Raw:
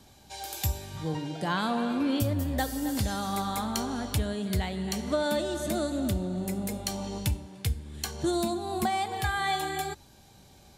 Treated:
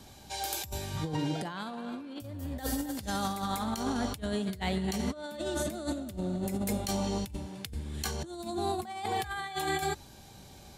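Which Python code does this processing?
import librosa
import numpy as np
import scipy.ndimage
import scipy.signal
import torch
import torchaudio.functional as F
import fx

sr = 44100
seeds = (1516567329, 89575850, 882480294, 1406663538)

y = fx.over_compress(x, sr, threshold_db=-33.0, ratio=-0.5)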